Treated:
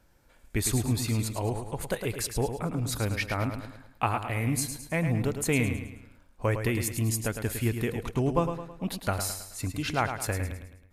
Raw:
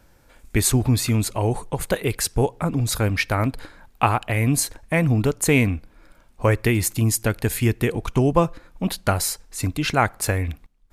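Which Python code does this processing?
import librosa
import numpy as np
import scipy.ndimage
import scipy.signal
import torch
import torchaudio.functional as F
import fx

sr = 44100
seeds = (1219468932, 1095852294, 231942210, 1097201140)

y = fx.echo_feedback(x, sr, ms=107, feedback_pct=44, wet_db=-8.0)
y = F.gain(torch.from_numpy(y), -8.5).numpy()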